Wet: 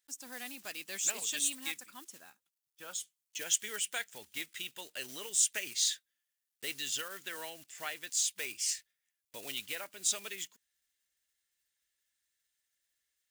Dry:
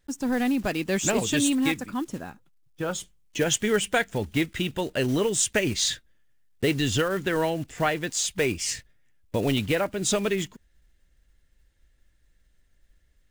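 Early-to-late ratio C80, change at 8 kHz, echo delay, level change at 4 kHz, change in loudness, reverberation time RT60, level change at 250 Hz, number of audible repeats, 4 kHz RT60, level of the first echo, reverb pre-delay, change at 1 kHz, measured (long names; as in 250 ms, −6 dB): no reverb audible, −3.0 dB, no echo audible, −7.0 dB, −9.0 dB, no reverb audible, −28.5 dB, no echo audible, no reverb audible, no echo audible, no reverb audible, −17.5 dB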